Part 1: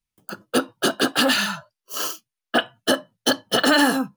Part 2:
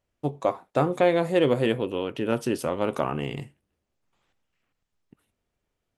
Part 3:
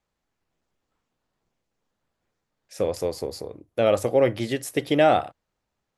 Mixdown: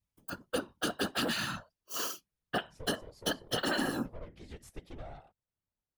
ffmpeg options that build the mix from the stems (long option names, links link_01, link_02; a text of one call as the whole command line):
ffmpeg -i stem1.wav -i stem2.wav -i stem3.wav -filter_complex "[0:a]volume=-1dB[link_01];[2:a]acompressor=threshold=-25dB:ratio=8,aeval=exprs='(tanh(25.1*val(0)+0.7)-tanh(0.7))/25.1':channel_layout=same,lowpass=10000,volume=-9dB[link_02];[link_01][link_02]amix=inputs=2:normalize=0,lowshelf=frequency=90:gain=11.5,afftfilt=real='hypot(re,im)*cos(2*PI*random(0))':imag='hypot(re,im)*sin(2*PI*random(1))':win_size=512:overlap=0.75,acompressor=threshold=-31dB:ratio=3" out.wav